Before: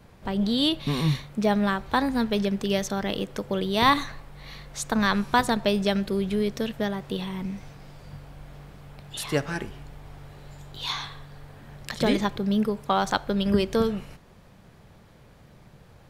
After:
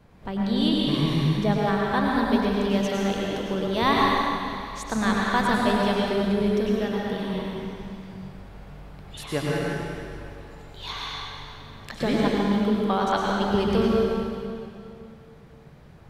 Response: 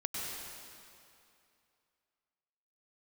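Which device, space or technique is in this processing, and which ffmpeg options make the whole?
swimming-pool hall: -filter_complex "[1:a]atrim=start_sample=2205[s0];[0:a][s0]afir=irnorm=-1:irlink=0,highshelf=f=3900:g=-6.5,volume=0.891"

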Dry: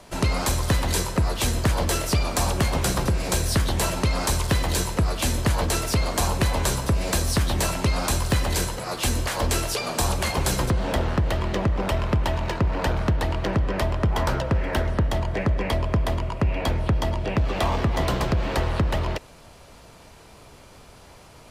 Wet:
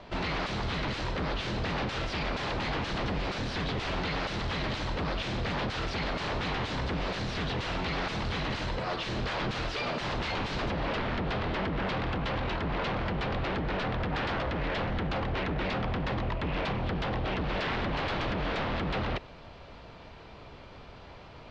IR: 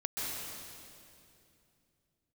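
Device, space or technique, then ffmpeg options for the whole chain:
synthesiser wavefolder: -af "aeval=exprs='0.0501*(abs(mod(val(0)/0.0501+3,4)-2)-1)':c=same,lowpass=f=4100:w=0.5412,lowpass=f=4100:w=1.3066"

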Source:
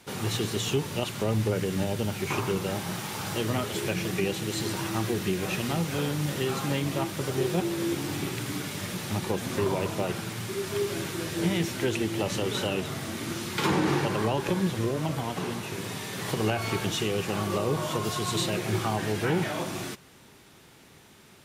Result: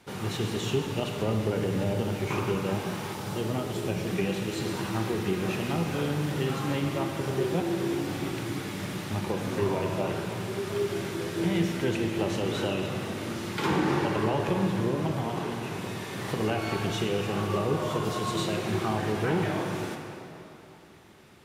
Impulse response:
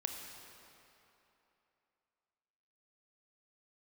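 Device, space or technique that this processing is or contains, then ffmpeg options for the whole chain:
swimming-pool hall: -filter_complex "[0:a]asettb=1/sr,asplit=3[s0][s1][s2];[s0]atrim=end=3.144[s3];[s1]atrim=start=3.14:end=4.07,asetpts=PTS-STARTPTS,afade=t=in:d=0.004:c=qsin,afade=t=out:st=0.926:d=0.004:c=qsin,equalizer=f=1800:w=0.75:g=-6[s4];[s2]atrim=start=4.066[s5];[s3][s4]acrossfade=d=0.004:c1=hsin:c2=qsin[s6];[s6][s5]acrossfade=d=0.004:c1=qsin:c2=hsin[s7];[1:a]atrim=start_sample=2205[s8];[s7][s8]afir=irnorm=-1:irlink=0,highshelf=f=3500:g=-7.5"

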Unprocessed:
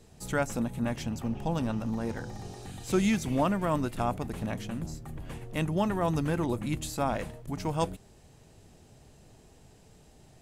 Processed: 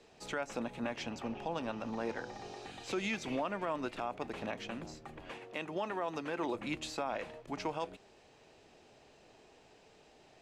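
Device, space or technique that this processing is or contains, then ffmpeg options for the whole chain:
DJ mixer with the lows and highs turned down: -filter_complex "[0:a]acrossover=split=300 5900:gain=0.126 1 0.0708[s0][s1][s2];[s0][s1][s2]amix=inputs=3:normalize=0,alimiter=level_in=1.33:limit=0.0631:level=0:latency=1:release=160,volume=0.75,asettb=1/sr,asplit=3[s3][s4][s5];[s3]atrim=end=5.304[s6];[s4]atrim=start=5.3:end=6.55,asetpts=PTS-STARTPTS,afade=t=in:d=0.004:c=qsin,afade=t=out:st=1.246:d=0.004:c=qsin,highpass=f=220:p=1[s7];[s5]atrim=start=6.546[s8];[s6][s7]acrossfade=d=0.004:c1=hsin:c2=qsin[s9];[s9][s8]acrossfade=d=0.004:c1=qsin:c2=hsin,equalizer=f=2500:w=4.9:g=4,volume=1.12"

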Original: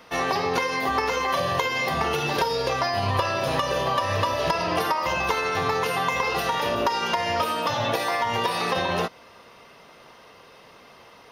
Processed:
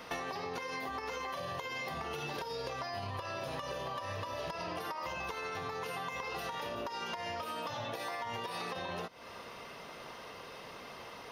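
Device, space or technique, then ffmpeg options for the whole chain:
serial compression, leveller first: -af "acompressor=threshold=0.0562:ratio=3,acompressor=threshold=0.0126:ratio=10,volume=1.19"

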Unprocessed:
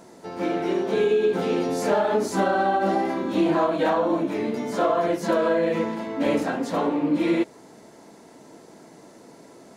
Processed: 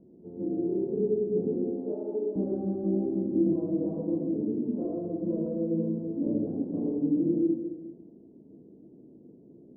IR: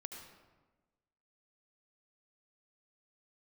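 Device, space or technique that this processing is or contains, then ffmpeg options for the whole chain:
next room: -filter_complex "[0:a]asettb=1/sr,asplit=3[s0][s1][s2];[s0]atrim=end=1.554[s3];[s1]atrim=start=1.55:end=2.36,asetpts=PTS-STARTPTS,afade=t=in:d=0.004:c=qsin,afade=t=out:st=0.806:d=0.004:c=qsin,highpass=f=280:w=0.5412,highpass=f=280:w=1.3066[s4];[s2]atrim=start=2.356[s5];[s3][s4]acrossfade=d=0.004:c1=hsin:c2=qsin[s6];[s6][s5]acrossfade=d=0.004:c1=qsin:c2=hsin,lowpass=f=380:w=0.5412,lowpass=f=380:w=1.3066[s7];[1:a]atrim=start_sample=2205[s8];[s7][s8]afir=irnorm=-1:irlink=0,volume=1.19"

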